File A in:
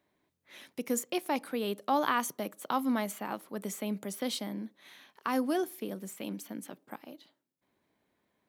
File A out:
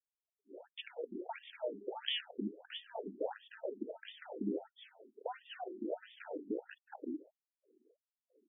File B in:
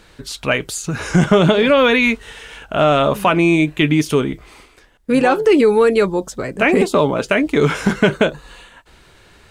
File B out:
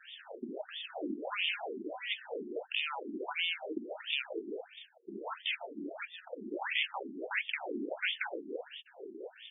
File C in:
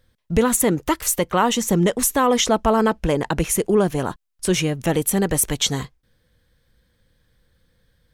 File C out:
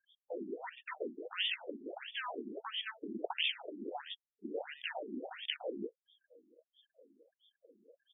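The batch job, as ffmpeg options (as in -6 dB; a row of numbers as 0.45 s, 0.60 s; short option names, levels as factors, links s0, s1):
-filter_complex "[0:a]firequalizer=gain_entry='entry(180,0);entry(460,15);entry(1200,-23);entry(3300,14);entry(6900,-4);entry(13000,12)':delay=0.05:min_phase=1,afftfilt=real='re*lt(hypot(re,im),0.2)':imag='im*lt(hypot(re,im),0.2)':win_size=1024:overlap=0.75,acrossover=split=3800[s0][s1];[s1]acompressor=threshold=0.00891:ratio=4:attack=1:release=60[s2];[s0][s2]amix=inputs=2:normalize=0,asplit=2[s3][s4];[s4]acrusher=samples=40:mix=1:aa=0.000001,volume=0.473[s5];[s3][s5]amix=inputs=2:normalize=0,highpass=120,afftfilt=real='re*gte(hypot(re,im),0.00112)':imag='im*gte(hypot(re,im),0.00112)':win_size=1024:overlap=0.75,afftfilt=real='re*between(b*sr/1024,270*pow(2600/270,0.5+0.5*sin(2*PI*1.5*pts/sr))/1.41,270*pow(2600/270,0.5+0.5*sin(2*PI*1.5*pts/sr))*1.41)':imag='im*between(b*sr/1024,270*pow(2600/270,0.5+0.5*sin(2*PI*1.5*pts/sr))/1.41,270*pow(2600/270,0.5+0.5*sin(2*PI*1.5*pts/sr))*1.41)':win_size=1024:overlap=0.75,volume=1.12"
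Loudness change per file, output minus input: -9.5 LU, -21.5 LU, -20.5 LU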